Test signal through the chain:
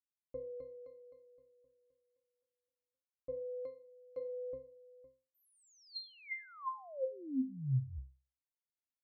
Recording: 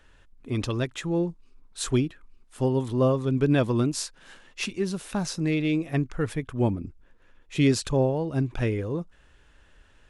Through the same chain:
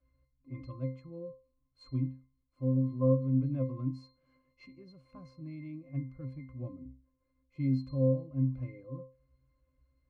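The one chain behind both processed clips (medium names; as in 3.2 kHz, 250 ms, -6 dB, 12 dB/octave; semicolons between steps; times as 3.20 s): pitch-class resonator C, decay 0.34 s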